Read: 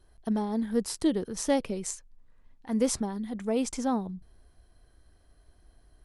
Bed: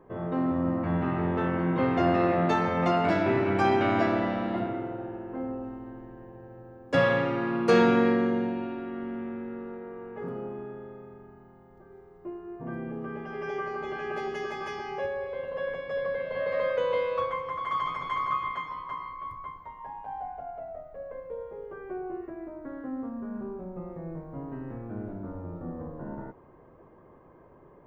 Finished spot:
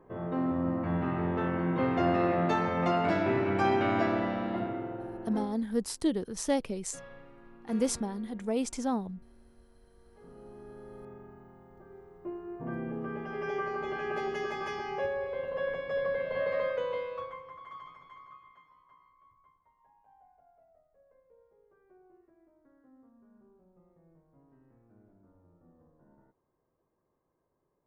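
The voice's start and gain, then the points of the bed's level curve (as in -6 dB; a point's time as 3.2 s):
5.00 s, -2.5 dB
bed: 5.41 s -3 dB
5.66 s -26.5 dB
9.84 s -26.5 dB
11.07 s -0.5 dB
16.41 s -0.5 dB
18.44 s -25 dB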